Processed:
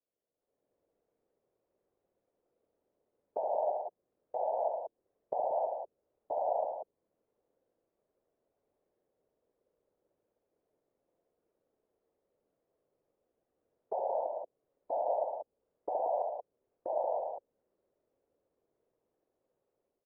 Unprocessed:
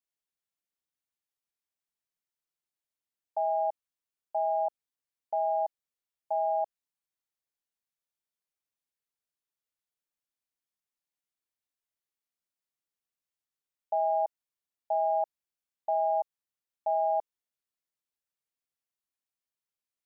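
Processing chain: level rider gain up to 14 dB; peak limiter -27 dBFS, peak gain reduction 20 dB; resonant low-pass 480 Hz, resonance Q 4.9; whisper effect; loudspeakers at several distances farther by 24 m -6 dB, 39 m -10 dB, 62 m -6 dB; tape noise reduction on one side only encoder only

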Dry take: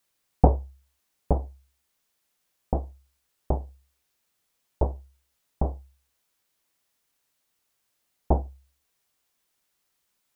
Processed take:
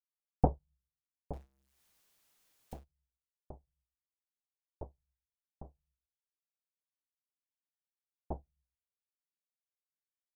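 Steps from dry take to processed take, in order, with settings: 1.33–2.84 s: jump at every zero crossing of -28 dBFS; on a send at -8.5 dB: inverse Chebyshev band-stop 420–1200 Hz, stop band 60 dB + reverberation RT60 0.55 s, pre-delay 4 ms; on the sum: upward expansion 2.5:1, over -35 dBFS; trim -7 dB

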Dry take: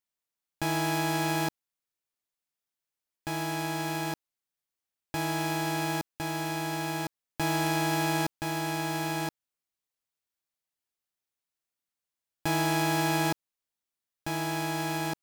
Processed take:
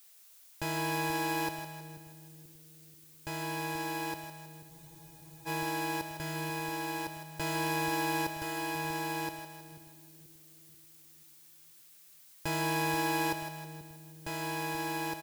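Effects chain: comb 2 ms, depth 65%; added noise blue -53 dBFS; on a send: two-band feedback delay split 340 Hz, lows 484 ms, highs 159 ms, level -8 dB; on the sum: spectral freeze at 4.72 s, 0.74 s; trim -5.5 dB

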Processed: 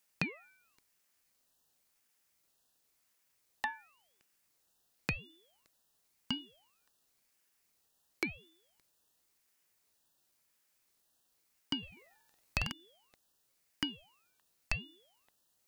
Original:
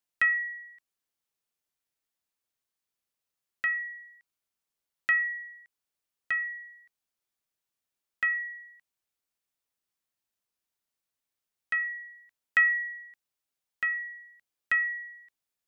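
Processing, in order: elliptic band-stop 1.4–3.1 kHz, stop band 40 dB; compression 6:1, threshold -44 dBFS, peak gain reduction 12.5 dB; 11.78–12.72 s: flutter echo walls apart 8.1 m, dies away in 0.92 s; ring modulator with a swept carrier 1 kHz, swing 60%, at 0.94 Hz; trim +15 dB

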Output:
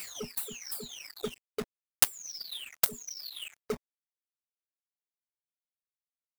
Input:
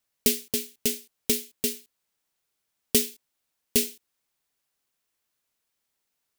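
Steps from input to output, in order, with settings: delay that grows with frequency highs early, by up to 924 ms; companded quantiser 2-bit; reverb removal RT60 0.99 s; transient shaper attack +12 dB, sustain -2 dB; trim -13.5 dB

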